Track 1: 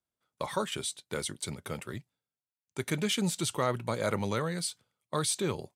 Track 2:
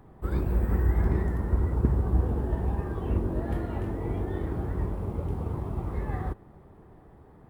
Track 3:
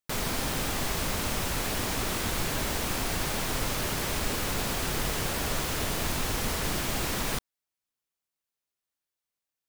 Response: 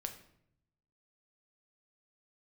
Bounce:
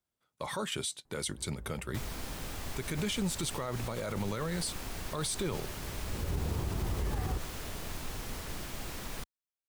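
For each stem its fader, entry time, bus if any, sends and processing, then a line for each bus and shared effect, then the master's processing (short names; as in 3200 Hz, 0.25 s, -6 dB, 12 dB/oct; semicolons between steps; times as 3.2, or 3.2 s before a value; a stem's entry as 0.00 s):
+1.5 dB, 0.00 s, no send, dry
-2.0 dB, 1.05 s, no send, auto duck -24 dB, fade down 1.35 s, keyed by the first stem
-12.0 dB, 1.85 s, no send, dry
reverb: off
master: low shelf 64 Hz +6.5 dB; limiter -24.5 dBFS, peak gain reduction 11.5 dB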